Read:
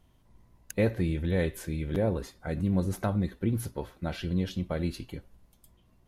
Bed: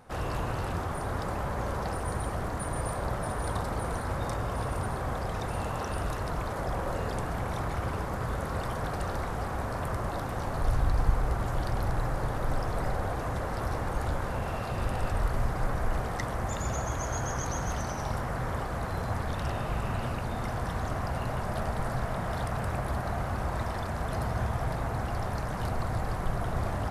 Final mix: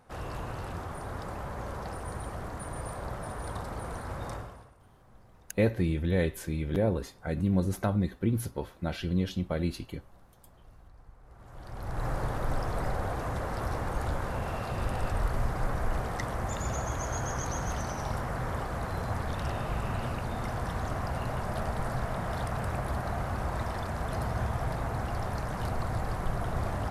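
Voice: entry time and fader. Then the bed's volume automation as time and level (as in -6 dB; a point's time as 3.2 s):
4.80 s, +0.5 dB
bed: 4.36 s -5.5 dB
4.77 s -28.5 dB
11.19 s -28.5 dB
12.08 s -1 dB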